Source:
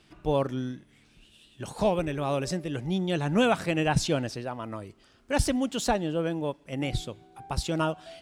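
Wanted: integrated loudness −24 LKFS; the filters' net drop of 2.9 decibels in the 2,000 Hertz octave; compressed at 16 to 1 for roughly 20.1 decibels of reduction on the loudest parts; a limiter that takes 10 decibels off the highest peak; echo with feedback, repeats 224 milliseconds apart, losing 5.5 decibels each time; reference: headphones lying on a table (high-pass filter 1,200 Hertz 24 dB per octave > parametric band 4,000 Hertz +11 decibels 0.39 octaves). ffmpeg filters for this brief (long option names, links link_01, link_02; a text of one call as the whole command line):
ffmpeg -i in.wav -af "equalizer=frequency=2000:width_type=o:gain=-4.5,acompressor=threshold=-39dB:ratio=16,alimiter=level_in=13.5dB:limit=-24dB:level=0:latency=1,volume=-13.5dB,highpass=frequency=1200:width=0.5412,highpass=frequency=1200:width=1.3066,equalizer=frequency=4000:width_type=o:width=0.39:gain=11,aecho=1:1:224|448|672|896|1120|1344|1568:0.531|0.281|0.149|0.079|0.0419|0.0222|0.0118,volume=27dB" out.wav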